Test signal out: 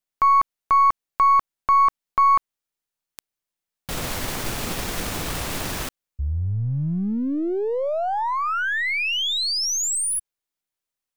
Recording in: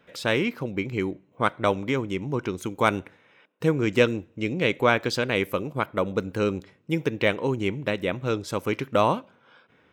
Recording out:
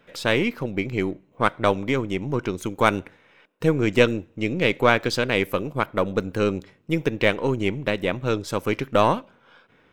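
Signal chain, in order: half-wave gain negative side -3 dB; gain +3.5 dB

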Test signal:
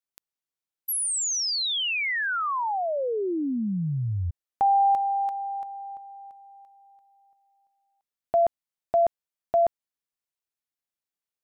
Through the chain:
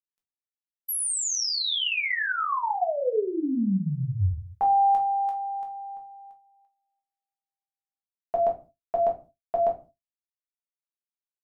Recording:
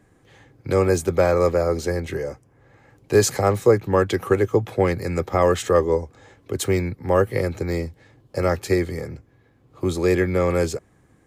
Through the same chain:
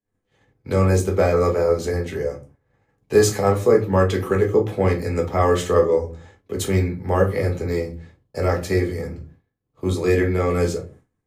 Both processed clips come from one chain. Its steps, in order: shoebox room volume 170 m³, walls furnished, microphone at 1.5 m; expander -38 dBFS, range -33 dB; gain -3 dB

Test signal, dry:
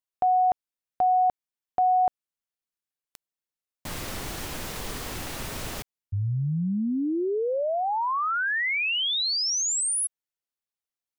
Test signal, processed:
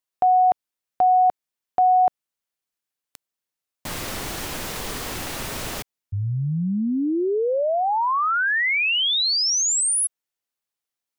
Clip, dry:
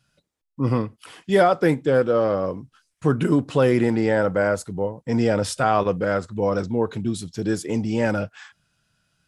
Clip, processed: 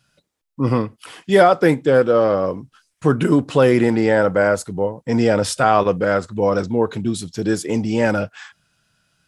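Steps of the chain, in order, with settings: low shelf 170 Hz -4.5 dB; gain +5 dB

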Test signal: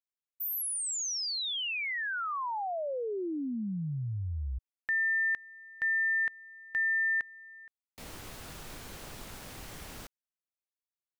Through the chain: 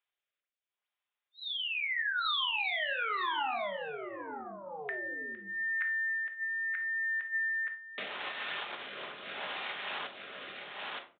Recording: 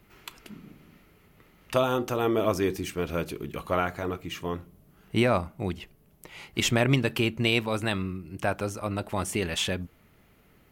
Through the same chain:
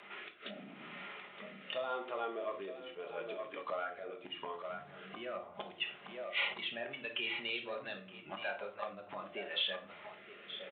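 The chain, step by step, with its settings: flipped gate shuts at -27 dBFS, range -25 dB; sine folder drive 19 dB, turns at -21 dBFS; on a send: echo 0.919 s -8.5 dB; on the sum: spectral noise reduction 8 dB; shoebox room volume 360 m³, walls furnished, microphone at 1.3 m; downsampling 8000 Hz; rotary speaker horn 0.8 Hz; compressor 5:1, threshold -29 dBFS; HPF 710 Hz 12 dB/oct

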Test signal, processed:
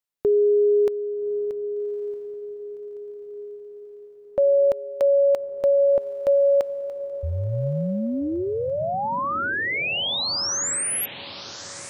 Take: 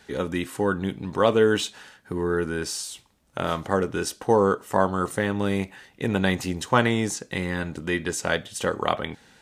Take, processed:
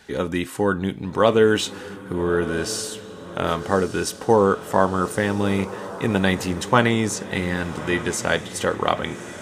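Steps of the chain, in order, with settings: diffused feedback echo 1.202 s, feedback 52%, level -13.5 dB; gain +3 dB

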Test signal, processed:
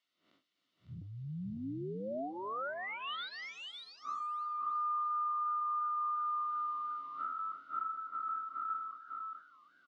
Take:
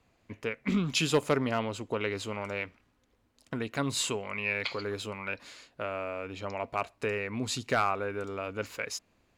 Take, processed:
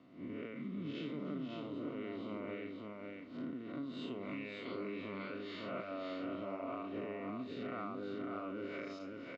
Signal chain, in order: time blur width 0.166 s; recorder AGC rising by 16 dB/s; reverb removal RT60 0.57 s; bell 270 Hz +14 dB 0.82 oct; compressor 10:1, threshold -44 dBFS; added noise violet -66 dBFS; speaker cabinet 160–3200 Hz, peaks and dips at 230 Hz -7 dB, 320 Hz -3 dB, 460 Hz -8 dB, 950 Hz -6 dB, 1700 Hz -7 dB, 2500 Hz -8 dB; notch comb 820 Hz; on a send: tapped delay 0.3/0.552 s -19/-3.5 dB; on the sum: warbling echo 0.311 s, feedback 53%, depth 149 cents, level -20.5 dB; gain +8.5 dB

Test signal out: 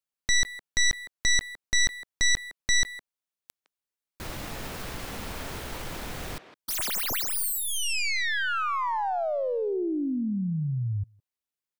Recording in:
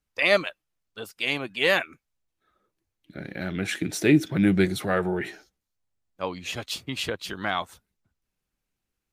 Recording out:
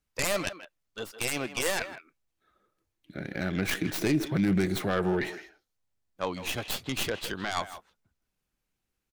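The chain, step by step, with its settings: tracing distortion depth 0.3 ms; limiter -17 dBFS; speakerphone echo 0.16 s, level -11 dB

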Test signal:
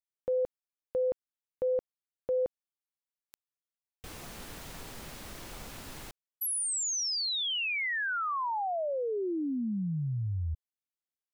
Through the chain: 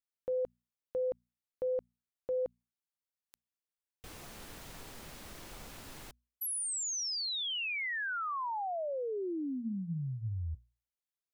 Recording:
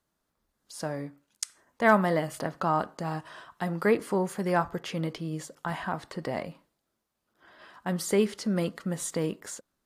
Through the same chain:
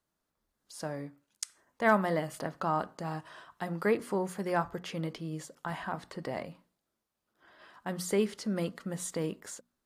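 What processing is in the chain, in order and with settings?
notches 60/120/180/240 Hz; gain -4 dB

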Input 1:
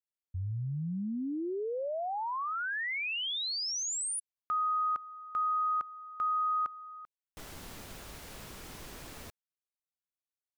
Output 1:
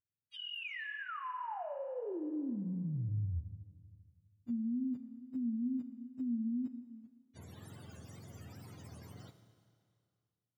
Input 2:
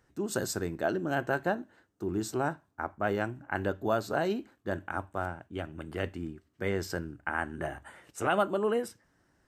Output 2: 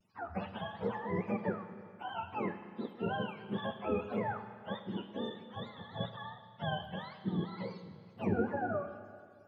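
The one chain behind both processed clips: spectrum mirrored in octaves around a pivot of 550 Hz; wow and flutter 140 cents; Schroeder reverb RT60 2.2 s, combs from 26 ms, DRR 9.5 dB; gain -4.5 dB

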